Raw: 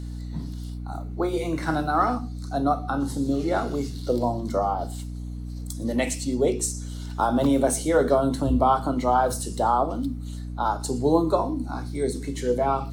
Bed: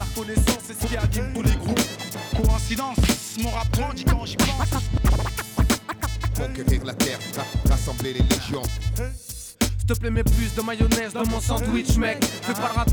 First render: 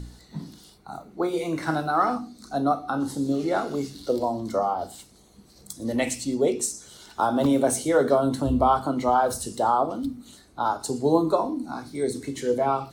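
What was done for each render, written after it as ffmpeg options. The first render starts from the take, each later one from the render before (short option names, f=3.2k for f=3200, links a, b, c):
-af "bandreject=f=60:t=h:w=4,bandreject=f=120:t=h:w=4,bandreject=f=180:t=h:w=4,bandreject=f=240:t=h:w=4,bandreject=f=300:t=h:w=4"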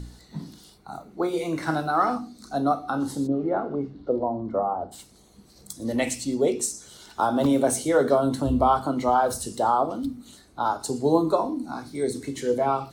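-filter_complex "[0:a]asplit=3[a][b][c];[a]afade=t=out:st=3.26:d=0.02[d];[b]lowpass=1.1k,afade=t=in:st=3.26:d=0.02,afade=t=out:st=4.91:d=0.02[e];[c]afade=t=in:st=4.91:d=0.02[f];[d][e][f]amix=inputs=3:normalize=0"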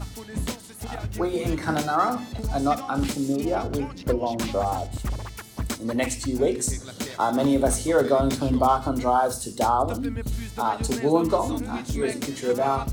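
-filter_complex "[1:a]volume=-10dB[a];[0:a][a]amix=inputs=2:normalize=0"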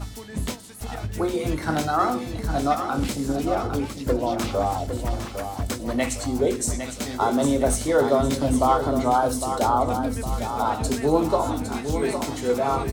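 -filter_complex "[0:a]asplit=2[a][b];[b]adelay=20,volume=-12dB[c];[a][c]amix=inputs=2:normalize=0,aecho=1:1:807|1614|2421|3228|4035:0.376|0.177|0.083|0.039|0.0183"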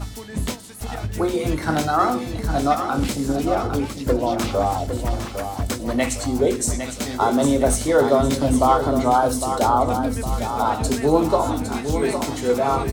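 -af "volume=3dB"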